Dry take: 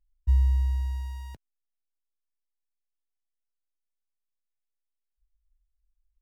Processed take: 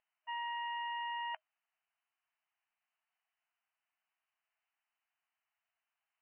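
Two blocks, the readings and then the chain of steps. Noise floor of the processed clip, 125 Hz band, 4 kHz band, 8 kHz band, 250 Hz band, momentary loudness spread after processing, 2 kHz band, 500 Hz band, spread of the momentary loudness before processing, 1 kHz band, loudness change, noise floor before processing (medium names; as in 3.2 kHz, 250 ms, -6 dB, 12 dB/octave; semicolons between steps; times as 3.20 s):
under -85 dBFS, under -40 dB, +11.0 dB, no reading, under -35 dB, 5 LU, +13.5 dB, +3.0 dB, 17 LU, +13.5 dB, -12.5 dB, -83 dBFS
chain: FFT band-pass 630–3100 Hz; trim +13.5 dB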